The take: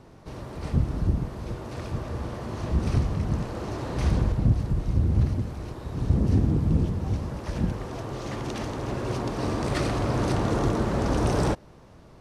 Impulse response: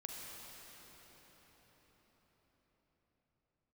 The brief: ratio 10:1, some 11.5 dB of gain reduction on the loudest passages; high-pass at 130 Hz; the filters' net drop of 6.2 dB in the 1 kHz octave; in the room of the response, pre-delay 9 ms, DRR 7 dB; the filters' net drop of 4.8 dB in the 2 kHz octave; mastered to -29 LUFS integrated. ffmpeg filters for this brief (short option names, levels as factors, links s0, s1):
-filter_complex "[0:a]highpass=130,equalizer=f=1000:t=o:g=-7.5,equalizer=f=2000:t=o:g=-3.5,acompressor=threshold=0.0224:ratio=10,asplit=2[s0][s1];[1:a]atrim=start_sample=2205,adelay=9[s2];[s1][s2]afir=irnorm=-1:irlink=0,volume=0.531[s3];[s0][s3]amix=inputs=2:normalize=0,volume=2.66"